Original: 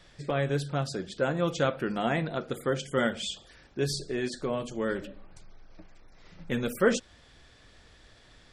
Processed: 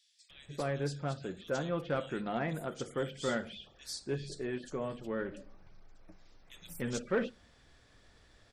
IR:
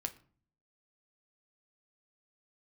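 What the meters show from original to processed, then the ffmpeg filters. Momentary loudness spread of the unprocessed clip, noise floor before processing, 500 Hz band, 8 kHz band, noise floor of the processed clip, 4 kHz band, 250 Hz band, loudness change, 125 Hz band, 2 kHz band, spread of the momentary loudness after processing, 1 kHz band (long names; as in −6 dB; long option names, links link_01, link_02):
8 LU, −57 dBFS, −6.5 dB, −6.5 dB, −64 dBFS, −8.5 dB, −6.5 dB, −7.0 dB, −6.5 dB, −7.5 dB, 11 LU, −6.5 dB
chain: -filter_complex "[0:a]acrossover=split=3100[link_01][link_02];[link_01]adelay=300[link_03];[link_03][link_02]amix=inputs=2:normalize=0,asoftclip=type=tanh:threshold=-16dB,asplit=2[link_04][link_05];[1:a]atrim=start_sample=2205[link_06];[link_05][link_06]afir=irnorm=-1:irlink=0,volume=-11.5dB[link_07];[link_04][link_07]amix=inputs=2:normalize=0,volume=-7.5dB"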